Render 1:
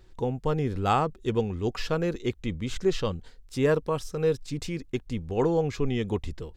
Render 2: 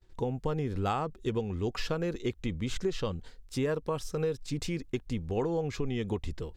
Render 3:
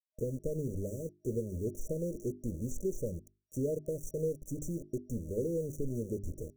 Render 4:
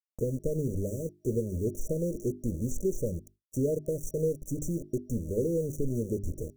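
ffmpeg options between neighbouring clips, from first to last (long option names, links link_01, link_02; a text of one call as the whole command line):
ffmpeg -i in.wav -af "agate=range=-33dB:threshold=-47dB:ratio=3:detection=peak,acompressor=threshold=-27dB:ratio=6" out.wav
ffmpeg -i in.wav -af "aeval=exprs='val(0)*gte(abs(val(0)),0.0133)':channel_layout=same,afftfilt=real='re*(1-between(b*sr/4096,630,5700))':imag='im*(1-between(b*sr/4096,630,5700))':win_size=4096:overlap=0.75,bandreject=frequency=50:width_type=h:width=6,bandreject=frequency=100:width_type=h:width=6,bandreject=frequency=150:width_type=h:width=6,bandreject=frequency=200:width_type=h:width=6,bandreject=frequency=250:width_type=h:width=6,bandreject=frequency=300:width_type=h:width=6,bandreject=frequency=350:width_type=h:width=6,bandreject=frequency=400:width_type=h:width=6,volume=-2.5dB" out.wav
ffmpeg -i in.wav -af "equalizer=frequency=1400:width_type=o:width=1.2:gain=-8,agate=range=-33dB:threshold=-56dB:ratio=3:detection=peak,volume=5.5dB" out.wav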